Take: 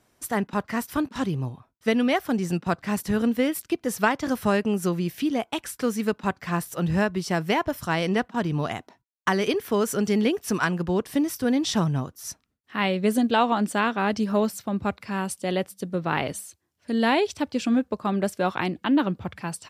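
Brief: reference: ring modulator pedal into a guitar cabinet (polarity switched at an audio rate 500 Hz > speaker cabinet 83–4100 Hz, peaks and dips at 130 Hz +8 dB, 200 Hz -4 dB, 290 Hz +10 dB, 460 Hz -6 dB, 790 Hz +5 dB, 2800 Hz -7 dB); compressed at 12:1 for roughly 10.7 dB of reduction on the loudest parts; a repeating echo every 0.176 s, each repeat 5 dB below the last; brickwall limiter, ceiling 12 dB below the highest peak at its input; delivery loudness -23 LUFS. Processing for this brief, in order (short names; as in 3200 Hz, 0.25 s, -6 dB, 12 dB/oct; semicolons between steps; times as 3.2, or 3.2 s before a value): compressor 12:1, threshold -28 dBFS; limiter -25.5 dBFS; feedback echo 0.176 s, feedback 56%, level -5 dB; polarity switched at an audio rate 500 Hz; speaker cabinet 83–4100 Hz, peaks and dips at 130 Hz +8 dB, 200 Hz -4 dB, 290 Hz +10 dB, 460 Hz -6 dB, 790 Hz +5 dB, 2800 Hz -7 dB; gain +8 dB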